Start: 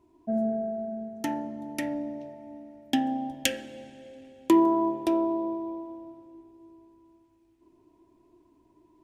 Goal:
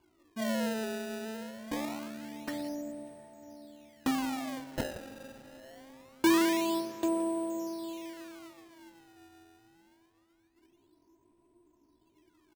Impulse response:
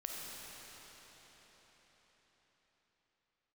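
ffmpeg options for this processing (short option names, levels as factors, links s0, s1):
-filter_complex "[0:a]aecho=1:1:121:0.141,atempo=0.72,acrusher=samples=23:mix=1:aa=0.000001:lfo=1:lforange=36.8:lforate=0.24,asplit=2[s0][s1];[1:a]atrim=start_sample=2205,lowpass=7100,adelay=113[s2];[s1][s2]afir=irnorm=-1:irlink=0,volume=0.158[s3];[s0][s3]amix=inputs=2:normalize=0,volume=0.531"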